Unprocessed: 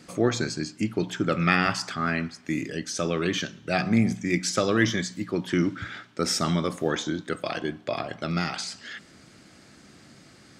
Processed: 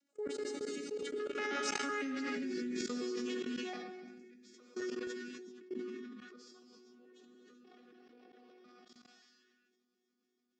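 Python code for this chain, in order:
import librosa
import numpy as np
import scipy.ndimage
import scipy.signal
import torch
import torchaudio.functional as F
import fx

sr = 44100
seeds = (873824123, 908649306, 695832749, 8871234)

y = fx.vocoder_arp(x, sr, chord='bare fifth', root=60, every_ms=135)
y = fx.doppler_pass(y, sr, speed_mps=24, closest_m=2.4, pass_at_s=2.12)
y = scipy.signal.sosfilt(scipy.signal.butter(4, 160.0, 'highpass', fs=sr, output='sos'), y)
y = fx.peak_eq(y, sr, hz=1000.0, db=-8.5, octaves=0.21)
y = y + 0.31 * np.pad(y, (int(4.9 * sr / 1000.0), 0))[:len(y)]
y = fx.rev_gated(y, sr, seeds[0], gate_ms=430, shape='flat', drr_db=0.0)
y = fx.level_steps(y, sr, step_db=23)
y = fx.high_shelf(y, sr, hz=2700.0, db=12.0)
y = fx.sustainer(y, sr, db_per_s=26.0)
y = F.gain(torch.from_numpy(y), 7.5).numpy()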